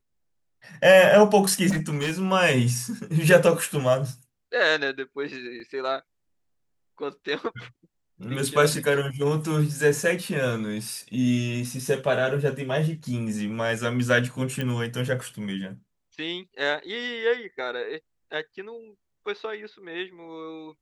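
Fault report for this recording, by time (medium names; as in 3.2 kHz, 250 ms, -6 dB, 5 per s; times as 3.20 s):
1.69–2.13 s: clipped -22 dBFS
5.60 s: dropout 2.9 ms
14.61 s: pop -16 dBFS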